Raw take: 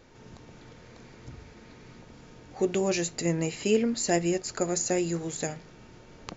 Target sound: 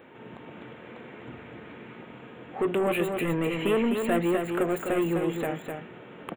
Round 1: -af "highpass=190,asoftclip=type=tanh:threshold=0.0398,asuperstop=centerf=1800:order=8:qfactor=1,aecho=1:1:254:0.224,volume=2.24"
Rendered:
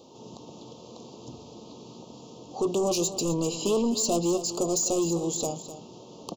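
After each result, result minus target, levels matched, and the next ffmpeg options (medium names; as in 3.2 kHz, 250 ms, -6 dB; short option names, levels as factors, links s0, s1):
2 kHz band -16.5 dB; echo-to-direct -7.5 dB
-af "highpass=190,asoftclip=type=tanh:threshold=0.0398,asuperstop=centerf=5500:order=8:qfactor=1,aecho=1:1:254:0.224,volume=2.24"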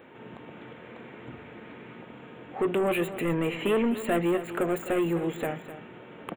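echo-to-direct -7.5 dB
-af "highpass=190,asoftclip=type=tanh:threshold=0.0398,asuperstop=centerf=5500:order=8:qfactor=1,aecho=1:1:254:0.531,volume=2.24"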